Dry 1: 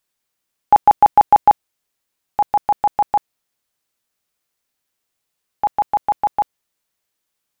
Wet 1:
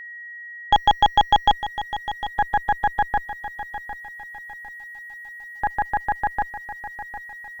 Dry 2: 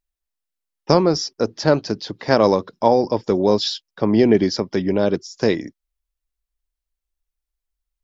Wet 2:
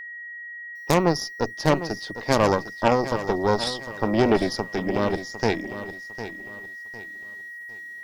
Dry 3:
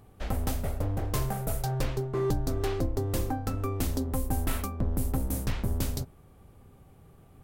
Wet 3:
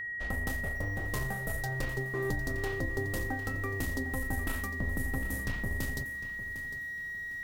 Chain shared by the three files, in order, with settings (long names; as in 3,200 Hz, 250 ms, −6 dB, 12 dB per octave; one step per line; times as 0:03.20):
harmonic generator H 6 −10 dB, 8 −20 dB, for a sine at −1 dBFS
steady tone 1,900 Hz −29 dBFS
feedback echo at a low word length 754 ms, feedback 35%, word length 7 bits, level −12 dB
level −6 dB